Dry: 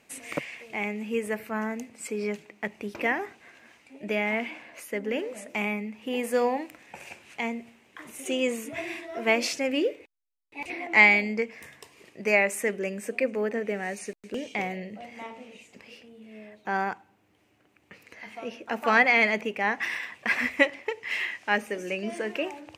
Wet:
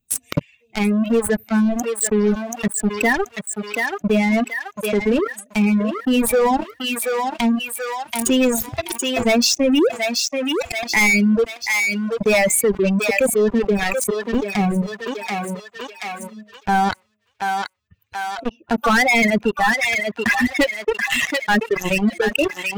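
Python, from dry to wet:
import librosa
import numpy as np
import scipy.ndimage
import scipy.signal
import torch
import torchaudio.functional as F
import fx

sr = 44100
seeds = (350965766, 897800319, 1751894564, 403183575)

y = fx.bin_expand(x, sr, power=2.0)
y = fx.leveller(y, sr, passes=5)
y = fx.low_shelf(y, sr, hz=330.0, db=8.5)
y = fx.echo_thinned(y, sr, ms=732, feedback_pct=28, hz=900.0, wet_db=-12.5)
y = fx.dereverb_blind(y, sr, rt60_s=0.85)
y = fx.env_flatten(y, sr, amount_pct=70)
y = y * librosa.db_to_amplitude(-6.5)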